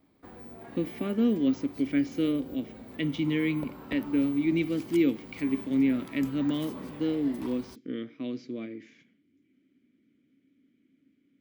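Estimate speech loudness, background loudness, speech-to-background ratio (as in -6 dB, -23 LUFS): -29.5 LUFS, -44.5 LUFS, 15.0 dB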